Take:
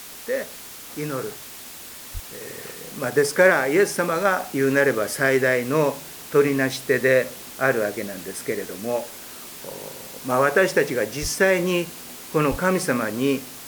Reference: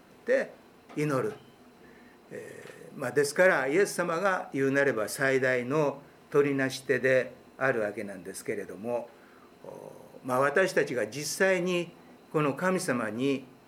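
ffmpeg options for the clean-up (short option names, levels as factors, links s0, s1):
-filter_complex "[0:a]asplit=3[s0][s1][s2];[s0]afade=t=out:st=2.13:d=0.02[s3];[s1]highpass=f=140:w=0.5412,highpass=f=140:w=1.3066,afade=t=in:st=2.13:d=0.02,afade=t=out:st=2.25:d=0.02[s4];[s2]afade=t=in:st=2.25:d=0.02[s5];[s3][s4][s5]amix=inputs=3:normalize=0,asplit=3[s6][s7][s8];[s6]afade=t=out:st=11.21:d=0.02[s9];[s7]highpass=f=140:w=0.5412,highpass=f=140:w=1.3066,afade=t=in:st=11.21:d=0.02,afade=t=out:st=11.33:d=0.02[s10];[s8]afade=t=in:st=11.33:d=0.02[s11];[s9][s10][s11]amix=inputs=3:normalize=0,asplit=3[s12][s13][s14];[s12]afade=t=out:st=12.5:d=0.02[s15];[s13]highpass=f=140:w=0.5412,highpass=f=140:w=1.3066,afade=t=in:st=12.5:d=0.02,afade=t=out:st=12.62:d=0.02[s16];[s14]afade=t=in:st=12.62:d=0.02[s17];[s15][s16][s17]amix=inputs=3:normalize=0,afwtdn=0.011,asetnsamples=n=441:p=0,asendcmd='2.41 volume volume -6.5dB',volume=1"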